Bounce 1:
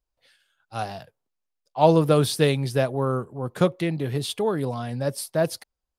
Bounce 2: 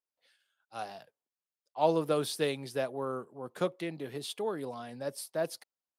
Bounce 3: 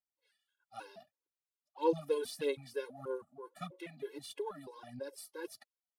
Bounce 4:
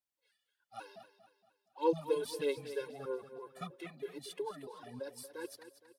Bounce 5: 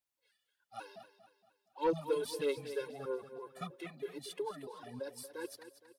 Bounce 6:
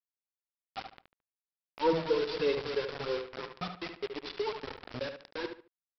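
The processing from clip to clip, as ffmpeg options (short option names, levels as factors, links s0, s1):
-af "highpass=250,volume=0.355"
-af "aphaser=in_gain=1:out_gain=1:delay=4.9:decay=0.62:speed=1.6:type=sinusoidal,afftfilt=real='re*gt(sin(2*PI*3.1*pts/sr)*(1-2*mod(floor(b*sr/1024/280),2)),0)':imag='im*gt(sin(2*PI*3.1*pts/sr)*(1-2*mod(floor(b*sr/1024/280),2)),0)':win_size=1024:overlap=0.75,volume=0.473"
-af "aecho=1:1:233|466|699|932:0.237|0.104|0.0459|0.0202"
-af "asoftclip=type=tanh:threshold=0.0668,volume=1.12"
-filter_complex "[0:a]aresample=11025,acrusher=bits=6:mix=0:aa=0.000001,aresample=44100,asplit=2[s0][s1];[s1]adelay=73,lowpass=f=3400:p=1,volume=0.447,asplit=2[s2][s3];[s3]adelay=73,lowpass=f=3400:p=1,volume=0.27,asplit=2[s4][s5];[s5]adelay=73,lowpass=f=3400:p=1,volume=0.27[s6];[s0][s2][s4][s6]amix=inputs=4:normalize=0,volume=1.58"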